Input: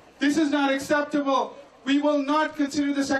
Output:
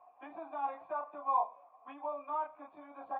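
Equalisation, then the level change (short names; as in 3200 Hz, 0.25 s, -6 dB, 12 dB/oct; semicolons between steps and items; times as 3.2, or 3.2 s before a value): vocal tract filter a; tilt shelf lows -9 dB, about 740 Hz; 0.0 dB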